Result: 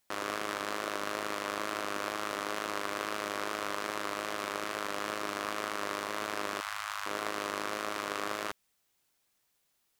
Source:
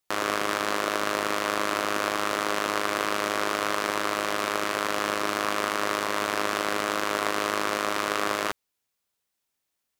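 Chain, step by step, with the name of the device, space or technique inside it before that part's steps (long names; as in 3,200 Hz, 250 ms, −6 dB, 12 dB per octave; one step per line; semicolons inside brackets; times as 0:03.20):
0:06.60–0:07.06: inverse Chebyshev band-stop filter 190–400 Hz, stop band 60 dB
plain cassette with noise reduction switched in (one half of a high-frequency compander decoder only; tape wow and flutter 28 cents; white noise bed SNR 39 dB)
level −8.5 dB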